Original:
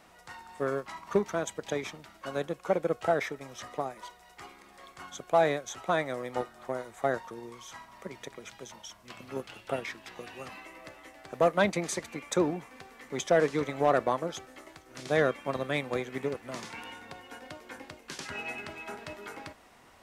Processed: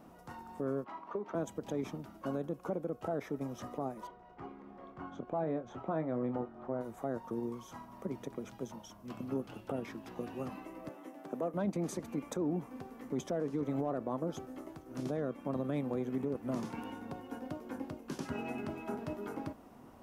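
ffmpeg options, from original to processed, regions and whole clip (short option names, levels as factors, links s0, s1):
-filter_complex "[0:a]asettb=1/sr,asplit=3[s0][s1][s2];[s0]atrim=end=0.844[s3];[s1]atrim=start=0.84:end=1.35,asetpts=PTS-STARTPTS,afade=t=in:d=0.004:c=qsin,afade=t=out:st=0.506:d=0.004:c=qsin,acrossover=split=300 3900:gain=0.126 1 0.0631[s4][s5][s6];[s4][s5][s6]amix=inputs=3:normalize=0,acompressor=threshold=0.0158:ratio=8:attack=3.2:release=140:knee=1:detection=peak[s7];[s2]atrim=start=1.346[s8];[s3][s7]acrossfade=d=0.004:c1=hsin:c2=qsin[s9];[s9][s8]acrossfade=d=0.004:c1=qsin:c2=hsin,asettb=1/sr,asplit=3[s10][s11][s12];[s10]atrim=end=4.074[s13];[s11]atrim=start=4.07:end=6.81,asetpts=PTS-STARTPTS,afade=t=in:d=0.004:c=qsin,afade=t=out:st=2.736:d=0.004:c=qsin,lowpass=2400,asplit=2[s14][s15];[s15]adelay=25,volume=0.299[s16];[s14][s16]amix=inputs=2:normalize=0,atrim=end_sample=120834[s17];[s12]atrim=start=6.806[s18];[s13][s17]acrossfade=d=0.004:c1=hsin:c2=qsin[s19];[s19][s18]acrossfade=d=0.004:c1=qsin:c2=hsin,asettb=1/sr,asplit=3[s20][s21][s22];[s20]atrim=end=10.894[s23];[s21]atrim=start=10.89:end=11.54,asetpts=PTS-STARTPTS,afade=t=in:d=0.004:c=qsin,afade=t=out:st=0.646:d=0.004:c=qsin,equalizer=f=4600:t=o:w=0.24:g=-5,acompressor=threshold=0.0126:ratio=1.5:attack=3.2:release=140:knee=1:detection=peak,highpass=f=180:w=0.5412,highpass=f=180:w=1.3066[s24];[s22]atrim=start=11.536[s25];[s23][s24]acrossfade=d=0.004:c1=hsin:c2=qsin[s26];[s26][s25]acrossfade=d=0.004:c1=qsin:c2=hsin,acompressor=threshold=0.0224:ratio=2.5,equalizer=f=125:t=o:w=1:g=4,equalizer=f=250:t=o:w=1:g=9,equalizer=f=2000:t=o:w=1:g=-11,equalizer=f=4000:t=o:w=1:g=-9,equalizer=f=8000:t=o:w=1:g=-9,alimiter=level_in=1.41:limit=0.0631:level=0:latency=1:release=27,volume=0.708,volume=1.12"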